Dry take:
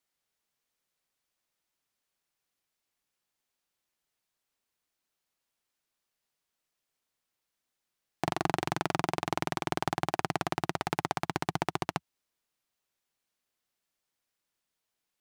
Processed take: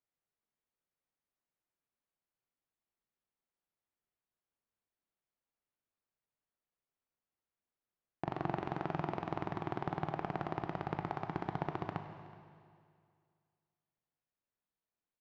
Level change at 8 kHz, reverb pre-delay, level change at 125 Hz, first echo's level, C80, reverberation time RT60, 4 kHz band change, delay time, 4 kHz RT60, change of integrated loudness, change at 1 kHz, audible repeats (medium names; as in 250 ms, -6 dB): under -25 dB, 19 ms, -3.5 dB, -21.0 dB, 8.0 dB, 2.2 s, -17.0 dB, 372 ms, 2.1 s, -6.5 dB, -7.0 dB, 1